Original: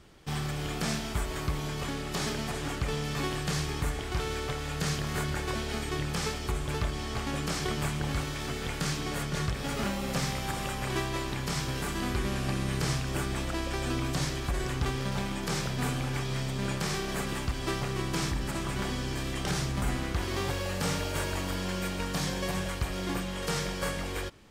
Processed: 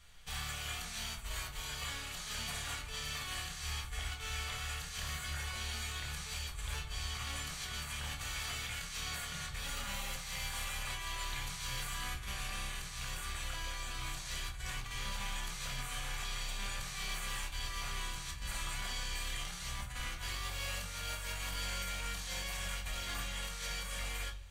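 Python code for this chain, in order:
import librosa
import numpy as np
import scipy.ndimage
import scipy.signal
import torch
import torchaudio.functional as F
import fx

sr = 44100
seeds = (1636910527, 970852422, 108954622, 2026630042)

y = fx.tone_stack(x, sr, knobs='10-0-10')
y = fx.notch(y, sr, hz=5200.0, q=6.4)
y = fx.over_compress(y, sr, threshold_db=-41.0, ratio=-0.5)
y = 10.0 ** (-30.5 / 20.0) * np.tanh(y / 10.0 ** (-30.5 / 20.0))
y = fx.room_shoebox(y, sr, seeds[0], volume_m3=260.0, walls='furnished', distance_m=1.8)
y = y * librosa.db_to_amplitude(-1.0)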